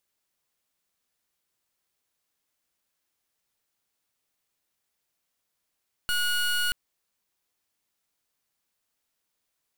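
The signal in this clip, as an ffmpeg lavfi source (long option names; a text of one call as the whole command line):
ffmpeg -f lavfi -i "aevalsrc='0.0531*(2*lt(mod(1450*t,1),0.23)-1)':duration=0.63:sample_rate=44100" out.wav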